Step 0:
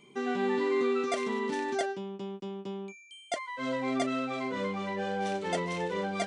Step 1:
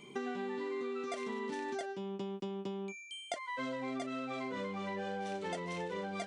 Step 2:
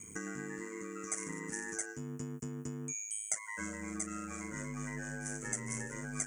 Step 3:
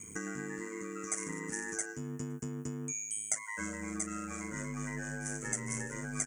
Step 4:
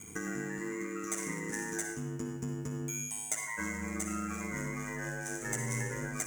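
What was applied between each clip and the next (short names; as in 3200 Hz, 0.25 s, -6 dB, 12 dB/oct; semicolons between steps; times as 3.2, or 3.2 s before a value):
compressor 10:1, threshold -40 dBFS, peak gain reduction 15.5 dB; gain +4 dB
EQ curve 120 Hz 0 dB, 770 Hz -22 dB, 1700 Hz -1 dB, 3800 Hz -30 dB, 6600 Hz +13 dB; ring modulator 53 Hz; gain +10 dB
outdoor echo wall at 88 m, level -26 dB; gain +2 dB
in parallel at -6 dB: sample-rate reducer 18000 Hz, jitter 0%; on the sum: reverb RT60 0.95 s, pre-delay 49 ms, DRR 4.5 dB; gain -2 dB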